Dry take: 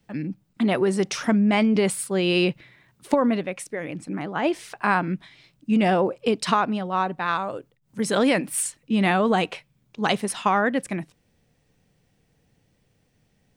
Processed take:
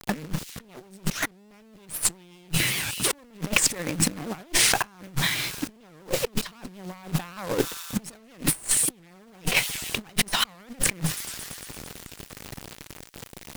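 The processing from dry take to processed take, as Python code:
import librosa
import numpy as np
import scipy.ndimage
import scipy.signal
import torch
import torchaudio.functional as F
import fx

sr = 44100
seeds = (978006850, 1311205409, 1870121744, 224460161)

p1 = fx.dynamic_eq(x, sr, hz=160.0, q=5.2, threshold_db=-44.0, ratio=4.0, max_db=6)
p2 = 10.0 ** (-16.5 / 20.0) * np.tanh(p1 / 10.0 ** (-16.5 / 20.0))
p3 = p1 + F.gain(torch.from_numpy(p2), -7.5).numpy()
p4 = fx.quant_companded(p3, sr, bits=4)
p5 = fx.peak_eq(p4, sr, hz=620.0, db=-2.5, octaves=1.1)
p6 = p5 + fx.echo_wet_highpass(p5, sr, ms=112, feedback_pct=78, hz=4200.0, wet_db=-19.5, dry=0)
p7 = fx.cheby_harmonics(p6, sr, harmonics=(5, 6), levels_db=(-10, -7), full_scale_db=-6.0)
p8 = fx.over_compress(p7, sr, threshold_db=-28.0, ratio=-0.5)
p9 = fx.record_warp(p8, sr, rpm=78.0, depth_cents=250.0)
y = F.gain(torch.from_numpy(p9), -1.0).numpy()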